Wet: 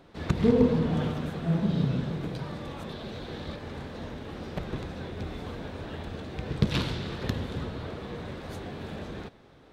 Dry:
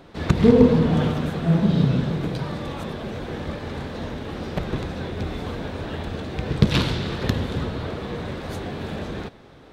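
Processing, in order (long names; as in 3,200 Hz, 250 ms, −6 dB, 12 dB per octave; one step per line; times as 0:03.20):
0:02.89–0:03.56: parametric band 4,000 Hz +8.5 dB 0.62 octaves
level −7.5 dB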